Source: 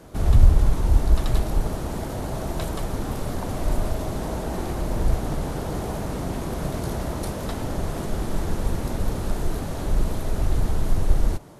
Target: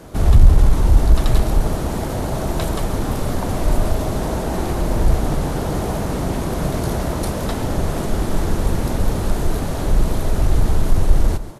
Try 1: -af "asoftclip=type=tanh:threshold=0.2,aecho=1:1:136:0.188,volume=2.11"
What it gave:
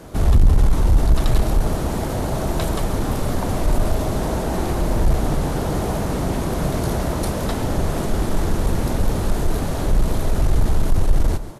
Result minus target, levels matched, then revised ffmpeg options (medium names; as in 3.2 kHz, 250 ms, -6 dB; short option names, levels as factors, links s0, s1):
saturation: distortion +8 dB
-af "asoftclip=type=tanh:threshold=0.447,aecho=1:1:136:0.188,volume=2.11"